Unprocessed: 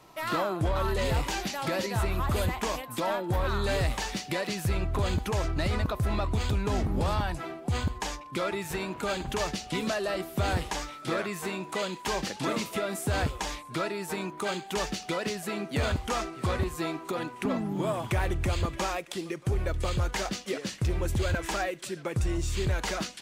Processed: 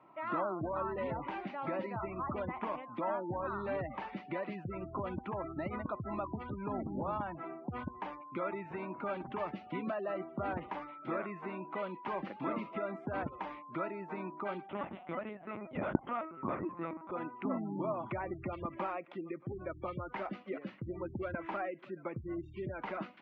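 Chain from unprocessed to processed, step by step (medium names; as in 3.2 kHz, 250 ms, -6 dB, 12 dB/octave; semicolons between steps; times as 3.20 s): spectral gate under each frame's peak -25 dB strong; 14.69–17.12 s: LPC vocoder at 8 kHz pitch kept; cabinet simulation 220–2000 Hz, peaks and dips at 450 Hz -9 dB, 750 Hz -3 dB, 1.7 kHz -9 dB; trim -3 dB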